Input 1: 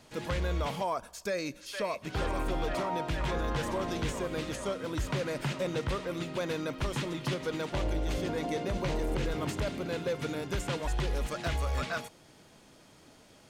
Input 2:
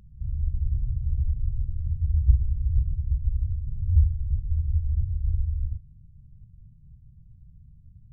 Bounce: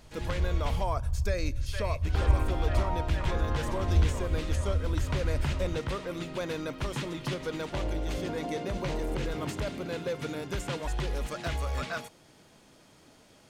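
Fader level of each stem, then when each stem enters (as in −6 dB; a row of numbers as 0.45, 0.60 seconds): −0.5, −4.5 decibels; 0.00, 0.00 seconds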